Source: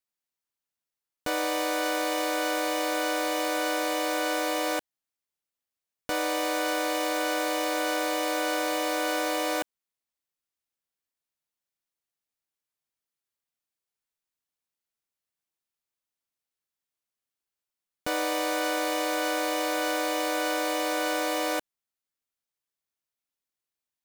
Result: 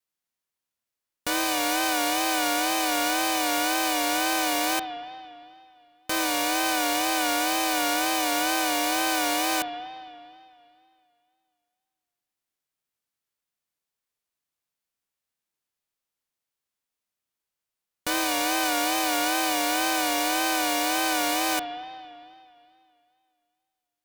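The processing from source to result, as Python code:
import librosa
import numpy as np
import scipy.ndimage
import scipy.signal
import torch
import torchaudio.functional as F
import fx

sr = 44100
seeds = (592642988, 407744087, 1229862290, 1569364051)

y = fx.envelope_flatten(x, sr, power=0.6)
y = fx.rev_spring(y, sr, rt60_s=2.4, pass_ms=(35, 57), chirp_ms=65, drr_db=6.0)
y = fx.wow_flutter(y, sr, seeds[0], rate_hz=2.1, depth_cents=69.0)
y = y * 10.0 ** (2.0 / 20.0)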